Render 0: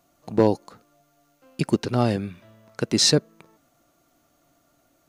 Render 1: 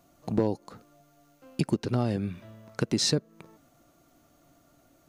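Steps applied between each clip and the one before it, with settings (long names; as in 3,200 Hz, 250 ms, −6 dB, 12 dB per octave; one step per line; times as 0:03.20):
low-shelf EQ 430 Hz +5.5 dB
downward compressor 3 to 1, threshold −25 dBFS, peak gain reduction 12 dB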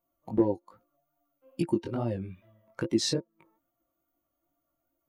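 spectral dynamics exaggerated over time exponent 1.5
chorus effect 2.4 Hz, delay 17 ms, depth 5.6 ms
hollow resonant body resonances 340/530/930 Hz, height 12 dB, ringing for 95 ms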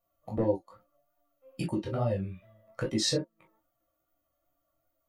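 convolution reverb, pre-delay 3 ms, DRR 2.5 dB
level −2 dB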